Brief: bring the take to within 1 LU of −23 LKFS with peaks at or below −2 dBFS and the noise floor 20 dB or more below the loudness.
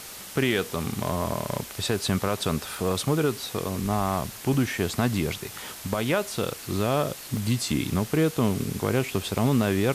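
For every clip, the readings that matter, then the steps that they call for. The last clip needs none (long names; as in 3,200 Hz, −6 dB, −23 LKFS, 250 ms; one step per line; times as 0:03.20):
number of dropouts 3; longest dropout 1.5 ms; background noise floor −41 dBFS; target noise floor −47 dBFS; integrated loudness −26.5 LKFS; sample peak −13.0 dBFS; target loudness −23.0 LKFS
→ repair the gap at 0:02.26/0:04.54/0:07.37, 1.5 ms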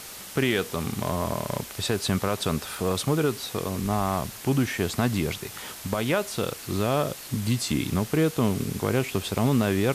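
number of dropouts 0; background noise floor −41 dBFS; target noise floor −47 dBFS
→ broadband denoise 6 dB, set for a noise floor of −41 dBFS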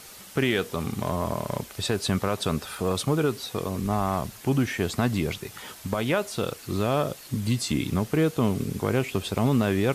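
background noise floor −46 dBFS; target noise floor −47 dBFS
→ broadband denoise 6 dB, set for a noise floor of −46 dBFS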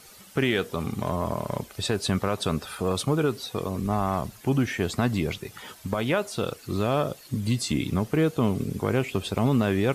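background noise floor −50 dBFS; integrated loudness −27.0 LKFS; sample peak −13.0 dBFS; target loudness −23.0 LKFS
→ level +4 dB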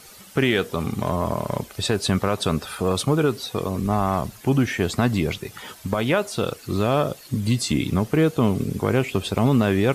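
integrated loudness −23.0 LKFS; sample peak −9.0 dBFS; background noise floor −46 dBFS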